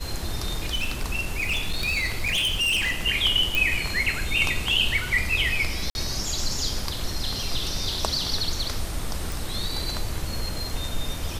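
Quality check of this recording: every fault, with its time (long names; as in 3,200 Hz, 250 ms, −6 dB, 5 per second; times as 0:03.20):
0:00.54–0:03.03: clipping −20.5 dBFS
0:03.55: click
0:05.90–0:05.95: drop-out 51 ms
0:09.32: click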